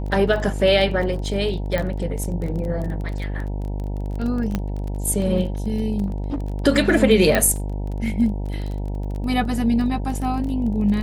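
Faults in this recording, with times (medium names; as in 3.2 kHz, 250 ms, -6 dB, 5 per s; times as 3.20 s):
buzz 50 Hz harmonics 19 -26 dBFS
crackle 24 per s -28 dBFS
1.78 s: pop -11 dBFS
4.55 s: pop -10 dBFS
6.06–6.48 s: clipped -21 dBFS
7.35 s: pop -5 dBFS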